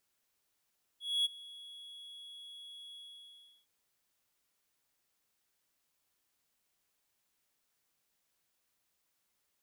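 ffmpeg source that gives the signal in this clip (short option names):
-f lavfi -i "aevalsrc='0.0596*(1-4*abs(mod(3350*t+0.25,1)-0.5))':d=2.663:s=44100,afade=t=in:d=0.251,afade=t=out:st=0.251:d=0.021:silence=0.0891,afade=t=out:st=1.95:d=0.713"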